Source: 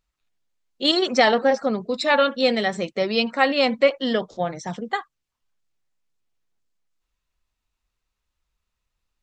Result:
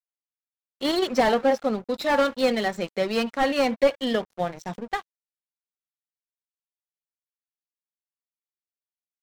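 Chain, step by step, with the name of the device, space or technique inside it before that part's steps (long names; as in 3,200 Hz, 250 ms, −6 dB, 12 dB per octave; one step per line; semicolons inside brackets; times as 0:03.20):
early transistor amplifier (dead-zone distortion −38.5 dBFS; slew-rate limiting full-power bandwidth 150 Hz)
level −1 dB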